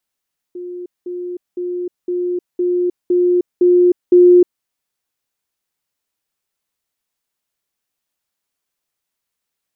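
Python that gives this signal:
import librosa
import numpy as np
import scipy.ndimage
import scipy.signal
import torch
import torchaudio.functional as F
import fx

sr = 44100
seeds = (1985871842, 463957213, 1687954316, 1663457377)

y = fx.level_ladder(sr, hz=356.0, from_db=-25.5, step_db=3.0, steps=8, dwell_s=0.31, gap_s=0.2)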